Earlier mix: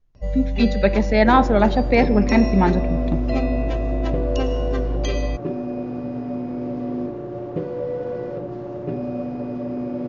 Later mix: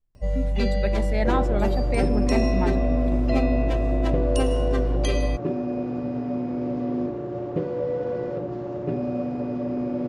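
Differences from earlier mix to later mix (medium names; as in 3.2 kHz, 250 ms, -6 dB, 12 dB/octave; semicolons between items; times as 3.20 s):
speech -11.0 dB; master: remove brick-wall FIR low-pass 7.1 kHz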